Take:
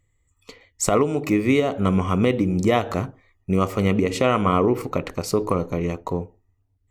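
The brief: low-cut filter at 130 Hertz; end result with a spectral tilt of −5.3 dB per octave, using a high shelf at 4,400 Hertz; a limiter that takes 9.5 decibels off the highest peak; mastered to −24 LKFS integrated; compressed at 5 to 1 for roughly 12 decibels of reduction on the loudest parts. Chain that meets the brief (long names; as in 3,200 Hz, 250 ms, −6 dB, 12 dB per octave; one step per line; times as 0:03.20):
high-pass filter 130 Hz
high-shelf EQ 4,400 Hz −3.5 dB
downward compressor 5 to 1, threshold −28 dBFS
level +10.5 dB
brickwall limiter −11.5 dBFS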